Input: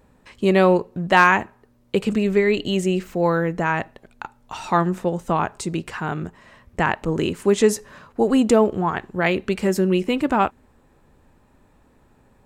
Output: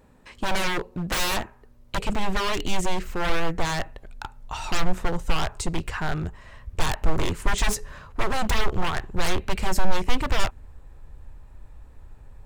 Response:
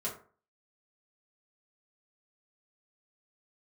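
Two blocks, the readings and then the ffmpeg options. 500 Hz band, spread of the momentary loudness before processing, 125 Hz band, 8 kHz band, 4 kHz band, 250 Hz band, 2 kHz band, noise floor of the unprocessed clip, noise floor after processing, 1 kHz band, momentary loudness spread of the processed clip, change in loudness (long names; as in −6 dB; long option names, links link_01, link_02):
−12.0 dB, 15 LU, −4.5 dB, +1.5 dB, +2.0 dB, −11.0 dB, −6.0 dB, −58 dBFS, −52 dBFS, −6.5 dB, 10 LU, −7.5 dB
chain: -af "aeval=exprs='0.0944*(abs(mod(val(0)/0.0944+3,4)-2)-1)':channel_layout=same,asubboost=boost=10:cutoff=69"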